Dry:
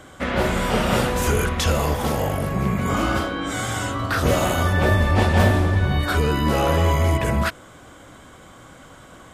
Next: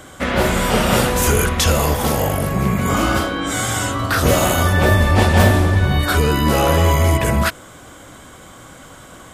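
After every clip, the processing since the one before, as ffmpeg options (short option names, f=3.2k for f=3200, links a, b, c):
-af "highshelf=f=6.2k:g=8,volume=4dB"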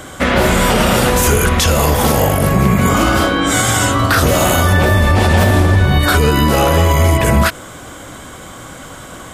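-af "alimiter=limit=-10.5dB:level=0:latency=1:release=70,volume=7.5dB"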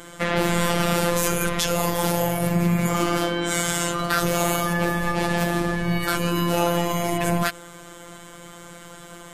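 -af "afftfilt=real='hypot(re,im)*cos(PI*b)':imag='0':win_size=1024:overlap=0.75,volume=-5.5dB"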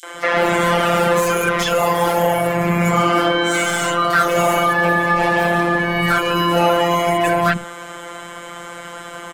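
-filter_complex "[0:a]asplit=2[a][b];[b]highpass=f=720:p=1,volume=20dB,asoftclip=type=tanh:threshold=-1dB[c];[a][c]amix=inputs=2:normalize=0,lowpass=f=2.6k:p=1,volume=-6dB,acrossover=split=310|4400[d][e][f];[e]adelay=30[g];[d]adelay=140[h];[h][g][f]amix=inputs=3:normalize=0"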